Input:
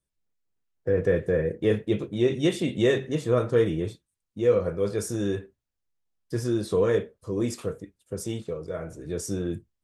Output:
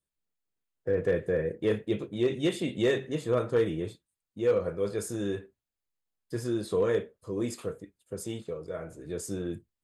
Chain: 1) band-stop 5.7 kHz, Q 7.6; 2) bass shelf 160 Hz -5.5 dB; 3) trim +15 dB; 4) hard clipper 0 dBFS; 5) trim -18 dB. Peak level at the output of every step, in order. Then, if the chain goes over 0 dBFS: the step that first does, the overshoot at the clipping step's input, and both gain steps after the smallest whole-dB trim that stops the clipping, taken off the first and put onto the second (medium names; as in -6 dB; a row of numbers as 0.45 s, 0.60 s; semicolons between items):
-10.0 dBFS, -11.0 dBFS, +4.0 dBFS, 0.0 dBFS, -18.0 dBFS; step 3, 4.0 dB; step 3 +11 dB, step 5 -14 dB